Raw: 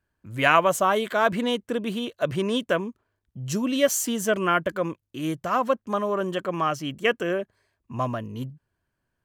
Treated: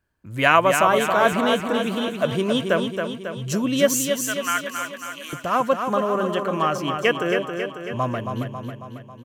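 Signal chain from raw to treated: 3.99–5.33 HPF 1400 Hz 12 dB/oct; feedback echo 0.273 s, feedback 58%, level -6 dB; gain +2.5 dB

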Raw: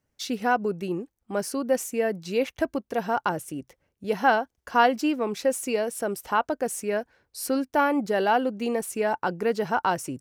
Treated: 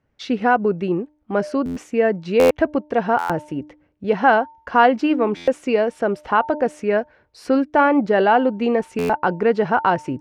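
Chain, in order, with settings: LPF 2600 Hz 12 dB/oct; de-hum 300.9 Hz, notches 3; in parallel at -2 dB: limiter -16 dBFS, peak gain reduction 8.5 dB; on the sum: stuck buffer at 1.65/2.39/3.18/5.36/8.98, samples 512, times 9; gain +3 dB

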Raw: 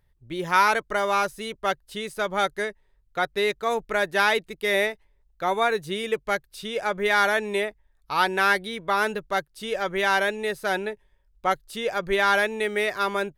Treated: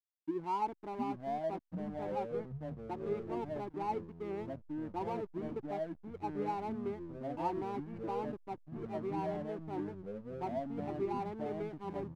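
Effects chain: EQ curve 640 Hz 0 dB, 3800 Hz -30 dB, 10000 Hz -18 dB; tempo 1.1×; vowel filter u; backlash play -46.5 dBFS; echoes that change speed 0.613 s, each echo -5 st, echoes 3; gain +4.5 dB

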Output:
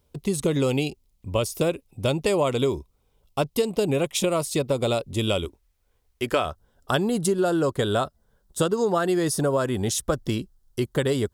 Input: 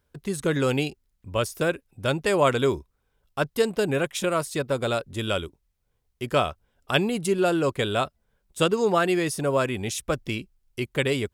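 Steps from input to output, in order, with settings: bell 1600 Hz -14.5 dB 0.53 oct, from 5.45 s 150 Hz, from 6.45 s 2400 Hz; compressor, threshold -25 dBFS, peak gain reduction 9 dB; gain +6 dB

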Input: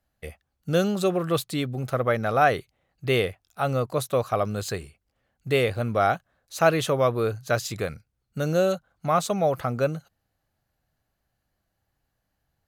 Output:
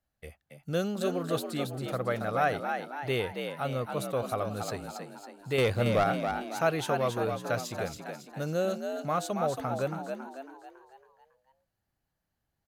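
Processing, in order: 5.58–6.04 sample leveller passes 2; frequency-shifting echo 0.276 s, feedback 48%, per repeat +64 Hz, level -6 dB; gain -7.5 dB

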